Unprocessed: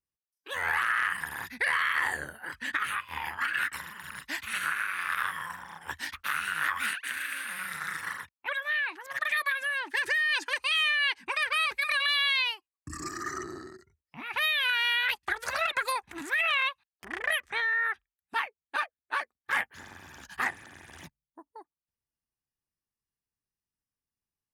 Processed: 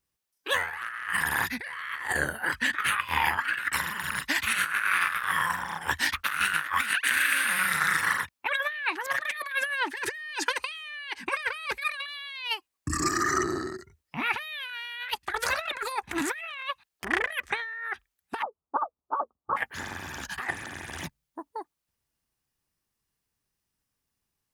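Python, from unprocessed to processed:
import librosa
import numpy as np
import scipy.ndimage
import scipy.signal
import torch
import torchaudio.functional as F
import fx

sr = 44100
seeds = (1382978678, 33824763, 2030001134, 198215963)

y = fx.steep_lowpass(x, sr, hz=1300.0, slope=96, at=(18.41, 19.56), fade=0.02)
y = fx.over_compress(y, sr, threshold_db=-34.0, ratio=-0.5)
y = y * 10.0 ** (6.0 / 20.0)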